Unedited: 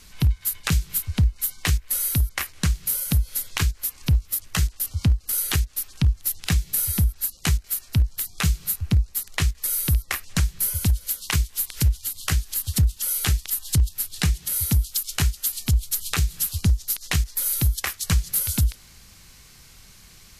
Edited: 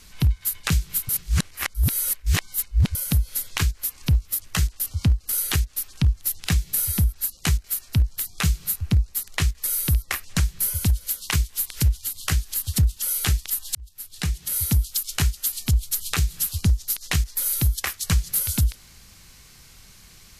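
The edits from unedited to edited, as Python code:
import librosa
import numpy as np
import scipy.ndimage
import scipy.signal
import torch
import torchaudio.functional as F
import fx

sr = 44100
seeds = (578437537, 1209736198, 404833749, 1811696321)

y = fx.edit(x, sr, fx.reverse_span(start_s=1.09, length_s=1.86),
    fx.fade_in_span(start_s=13.75, length_s=0.82), tone=tone)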